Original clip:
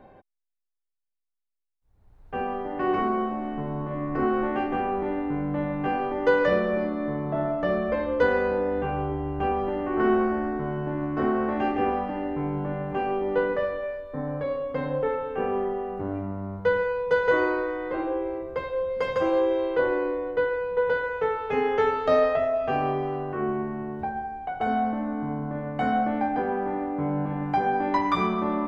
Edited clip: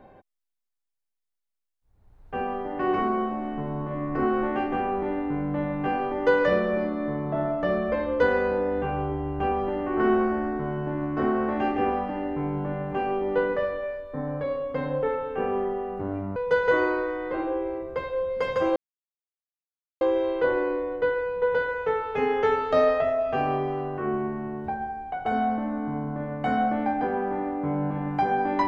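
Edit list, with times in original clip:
16.36–16.96 s: delete
19.36 s: insert silence 1.25 s

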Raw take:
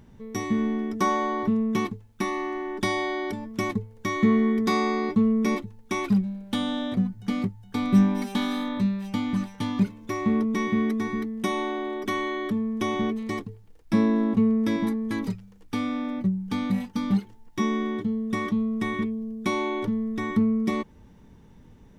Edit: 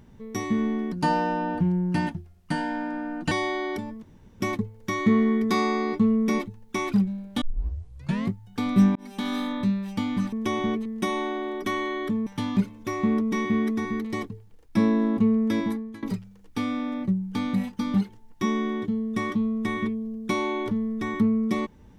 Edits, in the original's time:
0.92–2.86 s: speed 81%
3.57 s: insert room tone 0.38 s
6.58 s: tape start 0.90 s
8.12–8.52 s: fade in
9.49–11.27 s: swap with 12.68–13.21 s
14.78–15.19 s: fade out, to -21 dB

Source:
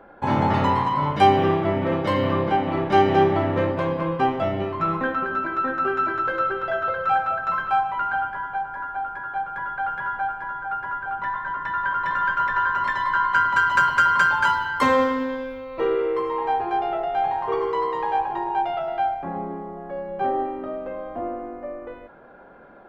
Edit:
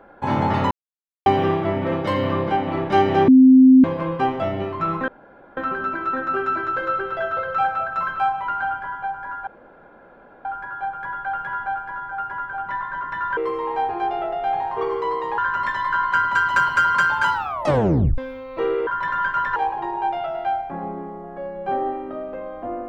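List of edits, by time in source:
0.71–1.26 s: mute
3.28–3.84 s: bleep 260 Hz -6.5 dBFS
5.08 s: insert room tone 0.49 s
8.98 s: insert room tone 0.98 s
11.90–12.59 s: swap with 16.08–18.09 s
14.54 s: tape stop 0.85 s

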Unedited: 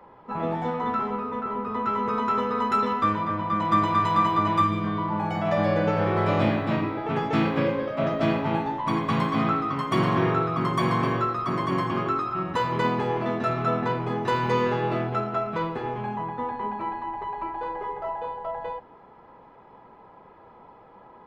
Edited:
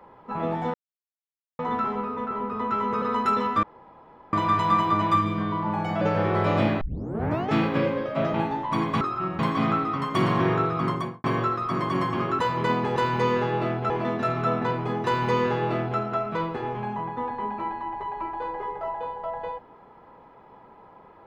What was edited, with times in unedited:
0.74 s: insert silence 0.85 s
2.17–2.48 s: delete
3.09–3.79 s: room tone
5.47–5.83 s: delete
6.63 s: tape start 0.71 s
8.16–8.49 s: delete
10.62–11.01 s: studio fade out
12.16–12.54 s: move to 9.16 s
14.26–15.20 s: copy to 13.11 s

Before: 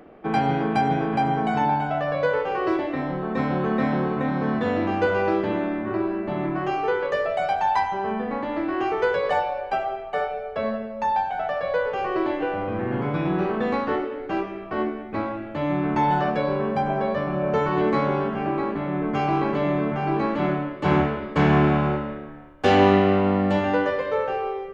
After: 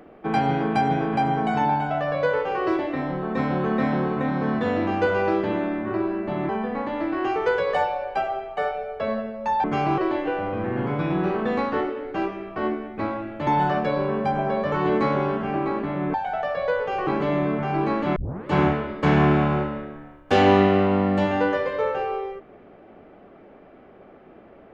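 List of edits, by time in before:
6.49–8.05 s: delete
11.20–12.13 s: swap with 19.06–19.40 s
15.62–15.98 s: delete
17.23–17.64 s: delete
20.49 s: tape start 0.32 s

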